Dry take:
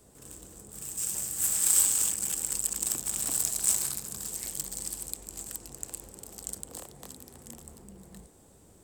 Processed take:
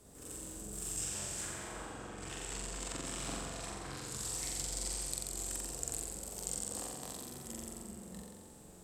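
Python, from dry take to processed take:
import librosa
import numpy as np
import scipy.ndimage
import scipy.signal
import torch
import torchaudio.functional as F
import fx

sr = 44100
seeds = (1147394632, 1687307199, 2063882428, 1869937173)

y = fx.env_lowpass_down(x, sr, base_hz=1100.0, full_db=-22.5)
y = fx.room_flutter(y, sr, wall_m=7.6, rt60_s=1.4)
y = y * librosa.db_to_amplitude(-2.0)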